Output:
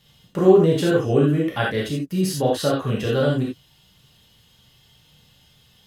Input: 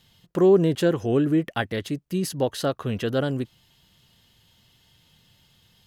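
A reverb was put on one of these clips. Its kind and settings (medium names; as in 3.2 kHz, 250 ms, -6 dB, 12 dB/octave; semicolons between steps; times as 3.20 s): gated-style reverb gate 110 ms flat, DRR -4 dB; trim -1.5 dB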